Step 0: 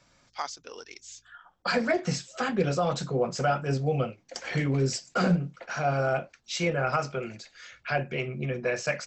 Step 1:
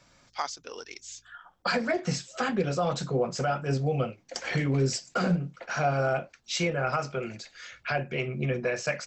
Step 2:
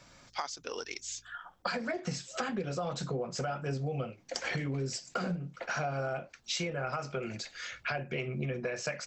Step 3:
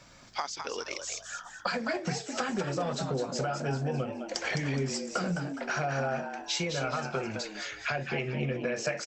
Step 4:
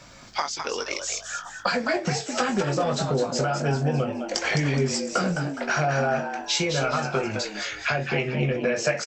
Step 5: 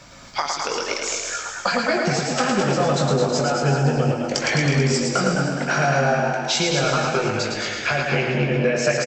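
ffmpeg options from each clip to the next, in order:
-af "alimiter=limit=-19.5dB:level=0:latency=1:release=486,volume=2.5dB"
-af "acompressor=threshold=-35dB:ratio=6,volume=3dB"
-filter_complex "[0:a]asplit=5[a][b][c][d][e];[b]adelay=210,afreqshift=100,volume=-7dB[f];[c]adelay=420,afreqshift=200,volume=-16.4dB[g];[d]adelay=630,afreqshift=300,volume=-25.7dB[h];[e]adelay=840,afreqshift=400,volume=-35.1dB[i];[a][f][g][h][i]amix=inputs=5:normalize=0,volume=2.5dB"
-filter_complex "[0:a]asplit=2[a][b];[b]adelay=20,volume=-8dB[c];[a][c]amix=inputs=2:normalize=0,volume=6.5dB"
-af "aecho=1:1:110|231|364.1|510.5|671.6:0.631|0.398|0.251|0.158|0.1,volume=2.5dB"

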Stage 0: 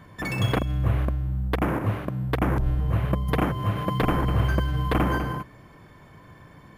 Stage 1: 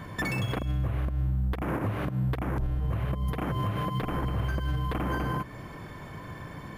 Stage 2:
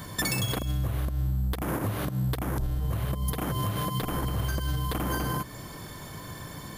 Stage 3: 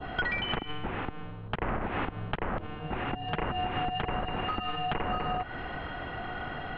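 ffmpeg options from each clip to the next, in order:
-af "acompressor=threshold=-28dB:ratio=6,alimiter=level_in=4.5dB:limit=-24dB:level=0:latency=1:release=188,volume=-4.5dB,volume=7.5dB"
-af "aexciter=amount=5:drive=3.9:freq=3.5k"
-af "highpass=f=260:t=q:w=0.5412,highpass=f=260:t=q:w=1.307,lowpass=f=3.1k:t=q:w=0.5176,lowpass=f=3.1k:t=q:w=0.7071,lowpass=f=3.1k:t=q:w=1.932,afreqshift=-300,adynamicequalizer=threshold=0.00355:dfrequency=1900:dqfactor=0.73:tfrequency=1900:tqfactor=0.73:attack=5:release=100:ratio=0.375:range=2:mode=boostabove:tftype=bell,acompressor=threshold=-35dB:ratio=6,volume=7.5dB"

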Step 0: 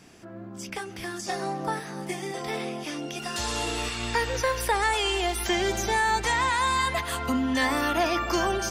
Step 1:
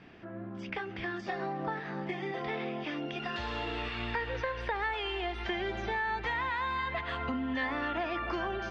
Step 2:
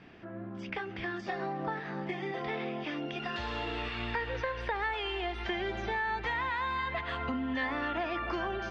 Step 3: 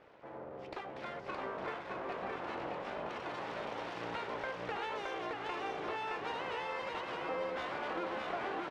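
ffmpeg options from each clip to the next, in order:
-af "acompressor=threshold=-31dB:ratio=4,lowpass=f=3.4k:w=0.5412,lowpass=f=3.4k:w=1.3066,equalizer=f=1.8k:t=o:w=0.43:g=3,volume=-1dB"
-af anull
-af "aeval=exprs='abs(val(0))':c=same,bandpass=f=600:t=q:w=0.72:csg=0,aecho=1:1:618:0.708,volume=2dB"

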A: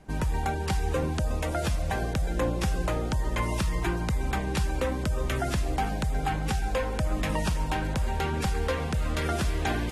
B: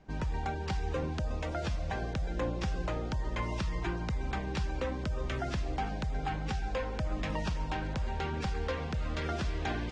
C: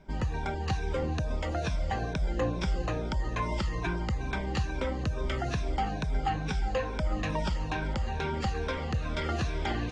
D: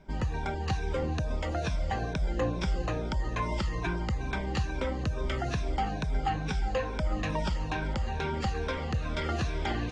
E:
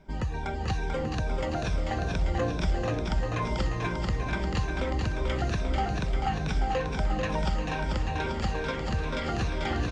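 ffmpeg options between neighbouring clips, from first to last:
-af "lowpass=f=6.1k:w=0.5412,lowpass=f=6.1k:w=1.3066,volume=-6dB"
-af "afftfilt=real='re*pow(10,10/40*sin(2*PI*(1.6*log(max(b,1)*sr/1024/100)/log(2)-(-2.3)*(pts-256)/sr)))':imag='im*pow(10,10/40*sin(2*PI*(1.6*log(max(b,1)*sr/1024/100)/log(2)-(-2.3)*(pts-256)/sr)))':win_size=1024:overlap=0.75,volume=2dB"
-af anull
-af "aecho=1:1:440|836|1192|1513|1802:0.631|0.398|0.251|0.158|0.1"

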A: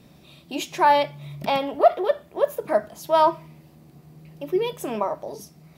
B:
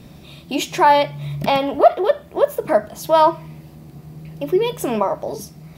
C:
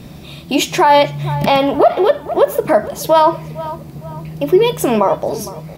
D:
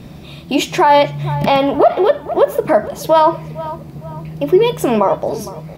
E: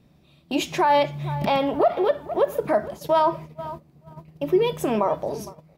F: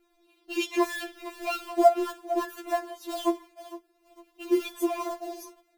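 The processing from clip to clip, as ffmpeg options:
-filter_complex "[0:a]lowshelf=f=110:g=8,asplit=2[a][b];[b]acompressor=threshold=-26dB:ratio=6,volume=-2dB[c];[a][c]amix=inputs=2:normalize=0,volume=2.5dB"
-filter_complex "[0:a]asplit=2[a][b];[b]adelay=459,lowpass=f=2.7k:p=1,volume=-18.5dB,asplit=2[c][d];[d]adelay=459,lowpass=f=2.7k:p=1,volume=0.41,asplit=2[e][f];[f]adelay=459,lowpass=f=2.7k:p=1,volume=0.41[g];[a][c][e][g]amix=inputs=4:normalize=0,alimiter=level_in=8dB:limit=-1dB:release=50:level=0:latency=1,volume=-1dB"
-af "highshelf=f=4.5k:g=-6"
-af "agate=range=-14dB:threshold=-26dB:ratio=16:detection=peak,volume=-8.5dB"
-filter_complex "[0:a]asplit=2[a][b];[b]acrusher=bits=2:mode=log:mix=0:aa=0.000001,volume=-3.5dB[c];[a][c]amix=inputs=2:normalize=0,afftfilt=real='re*4*eq(mod(b,16),0)':imag='im*4*eq(mod(b,16),0)':win_size=2048:overlap=0.75,volume=-7dB"

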